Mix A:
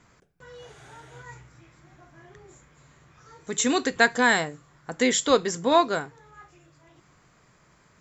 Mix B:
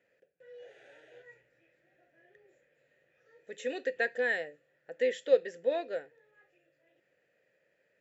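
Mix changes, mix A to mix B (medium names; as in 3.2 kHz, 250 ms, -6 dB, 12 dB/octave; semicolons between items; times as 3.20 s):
background +7.0 dB; master: add vowel filter e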